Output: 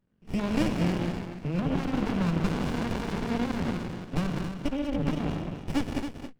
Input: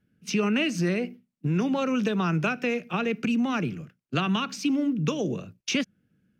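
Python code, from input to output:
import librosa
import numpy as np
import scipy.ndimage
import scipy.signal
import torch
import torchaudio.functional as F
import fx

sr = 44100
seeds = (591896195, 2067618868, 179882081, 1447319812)

y = fx.clip_1bit(x, sr, at=(2.52, 3.77))
y = fx.highpass(y, sr, hz=93.0, slope=6)
y = fx.high_shelf(y, sr, hz=2200.0, db=8.5)
y = fx.level_steps(y, sr, step_db=23, at=(4.29, 4.71), fade=0.02)
y = fx.brickwall_lowpass(y, sr, high_hz=3300.0)
y = y + 10.0 ** (-8.0 / 20.0) * np.pad(y, (int(274 * sr / 1000.0), 0))[:len(y)]
y = fx.rev_gated(y, sr, seeds[0], gate_ms=230, shape='rising', drr_db=2.5)
y = fx.running_max(y, sr, window=65)
y = F.gain(torch.from_numpy(y), -2.0).numpy()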